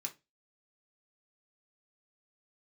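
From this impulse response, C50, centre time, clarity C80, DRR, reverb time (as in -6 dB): 17.0 dB, 8 ms, 26.0 dB, 1.0 dB, 0.20 s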